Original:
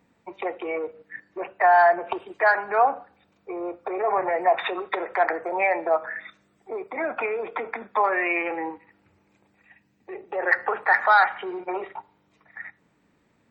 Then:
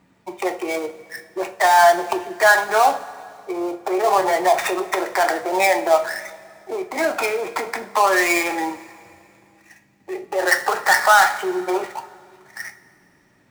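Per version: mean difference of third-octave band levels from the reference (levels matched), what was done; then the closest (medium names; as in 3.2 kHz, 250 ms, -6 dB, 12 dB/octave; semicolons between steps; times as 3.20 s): 9.5 dB: dead-time distortion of 0.1 ms; band-stop 500 Hz, Q 12; in parallel at -0.5 dB: peak limiter -14 dBFS, peak gain reduction 7.5 dB; on the sum: two-slope reverb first 0.29 s, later 2.5 s, from -18 dB, DRR 6 dB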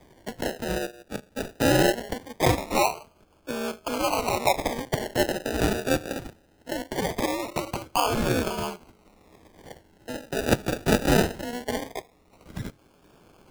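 18.0 dB: treble shelf 2.5 kHz +11 dB; ring modulator 120 Hz; decimation with a swept rate 32×, swing 60% 0.21 Hz; three bands compressed up and down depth 40%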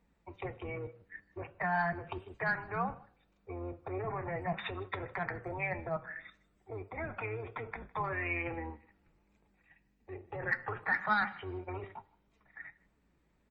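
5.5 dB: octave divider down 2 oct, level +4 dB; dynamic bell 680 Hz, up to -8 dB, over -33 dBFS, Q 1.3; flange 1.7 Hz, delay 4.3 ms, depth 2 ms, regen +72%; delay 157 ms -24 dB; trim -6 dB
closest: third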